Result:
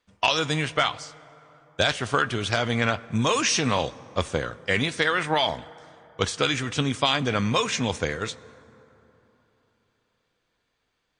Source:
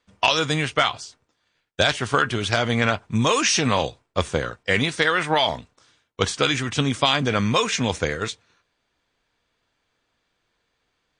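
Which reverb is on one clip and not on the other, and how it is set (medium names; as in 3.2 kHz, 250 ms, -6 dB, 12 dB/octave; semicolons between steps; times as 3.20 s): plate-style reverb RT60 3.6 s, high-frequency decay 0.45×, DRR 18.5 dB; trim -3 dB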